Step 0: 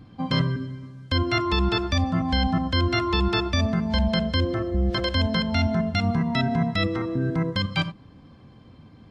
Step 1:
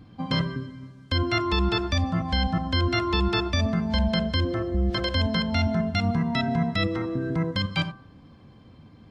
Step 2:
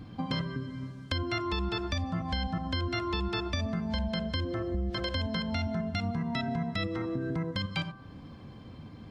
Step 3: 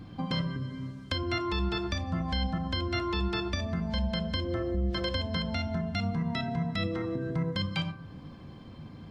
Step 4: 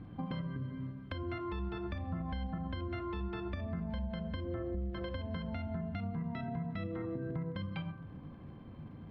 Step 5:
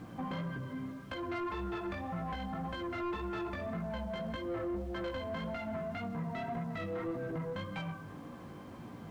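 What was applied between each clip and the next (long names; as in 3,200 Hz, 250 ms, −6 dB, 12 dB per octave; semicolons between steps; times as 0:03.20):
hum removal 129.9 Hz, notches 14; level −1 dB
downward compressor 3 to 1, threshold −36 dBFS, peak gain reduction 12.5 dB; level +3.5 dB
convolution reverb RT60 0.60 s, pre-delay 6 ms, DRR 10 dB
downward compressor, threshold −31 dBFS, peak gain reduction 6.5 dB; surface crackle 78 per second −44 dBFS; high-frequency loss of the air 500 metres; level −2.5 dB
chorus effect 1.8 Hz, delay 16.5 ms, depth 3.6 ms; bit-depth reduction 12 bits, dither triangular; mid-hump overdrive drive 21 dB, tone 1,600 Hz, clips at −28 dBFS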